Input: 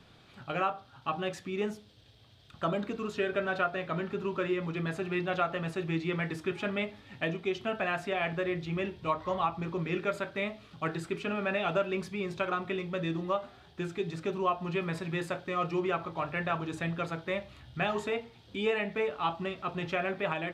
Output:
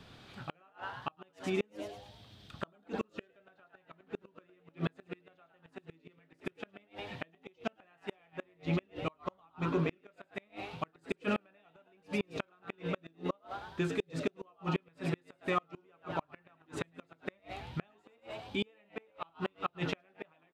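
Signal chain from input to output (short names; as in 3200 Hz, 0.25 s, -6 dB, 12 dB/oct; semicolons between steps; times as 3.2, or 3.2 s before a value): frequency-shifting echo 0.105 s, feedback 42%, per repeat +99 Hz, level -8 dB; flipped gate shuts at -23 dBFS, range -37 dB; gain +2.5 dB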